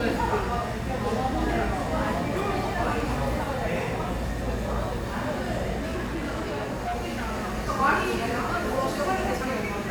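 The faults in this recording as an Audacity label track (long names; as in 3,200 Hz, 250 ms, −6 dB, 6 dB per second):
5.780000	7.550000	clipping −26 dBFS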